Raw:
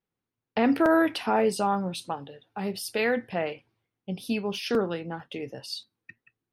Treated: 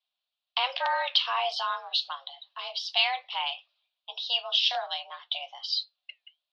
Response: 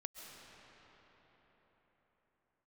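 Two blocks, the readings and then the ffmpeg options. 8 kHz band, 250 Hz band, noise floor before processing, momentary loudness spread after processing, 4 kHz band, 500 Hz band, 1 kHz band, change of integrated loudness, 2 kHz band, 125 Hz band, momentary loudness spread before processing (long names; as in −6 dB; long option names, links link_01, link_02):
−10.0 dB, below −40 dB, below −85 dBFS, 16 LU, +12.5 dB, −12.0 dB, −0.5 dB, −0.5 dB, −0.5 dB, below −40 dB, 15 LU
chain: -af "highpass=frequency=420:width_type=q:width=0.5412,highpass=frequency=420:width_type=q:width=1.307,lowpass=frequency=3600:width_type=q:width=0.5176,lowpass=frequency=3600:width_type=q:width=0.7071,lowpass=frequency=3600:width_type=q:width=1.932,afreqshift=260,flanger=delay=3.6:depth=3.8:regen=-80:speed=1.2:shape=triangular,aexciter=amount=14.5:drive=4.5:freq=3000"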